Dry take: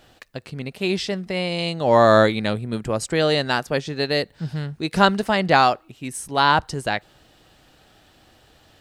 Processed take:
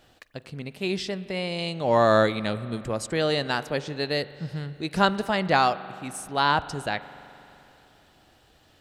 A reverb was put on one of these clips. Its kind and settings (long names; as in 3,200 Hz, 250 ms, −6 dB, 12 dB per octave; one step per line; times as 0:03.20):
spring reverb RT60 3.1 s, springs 42 ms, chirp 20 ms, DRR 15 dB
level −5 dB